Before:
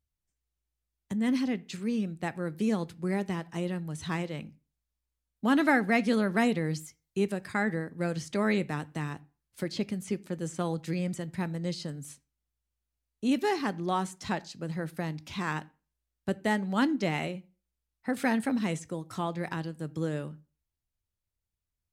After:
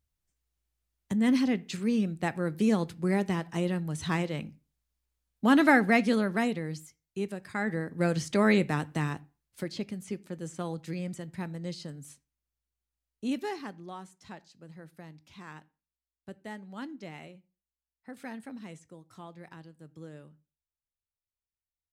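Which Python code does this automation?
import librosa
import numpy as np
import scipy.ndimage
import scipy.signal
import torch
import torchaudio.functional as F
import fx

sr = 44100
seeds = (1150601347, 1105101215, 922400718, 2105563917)

y = fx.gain(x, sr, db=fx.line((5.86, 3.0), (6.67, -5.0), (7.48, -5.0), (7.99, 4.0), (9.06, 4.0), (9.84, -4.0), (13.27, -4.0), (13.97, -14.0)))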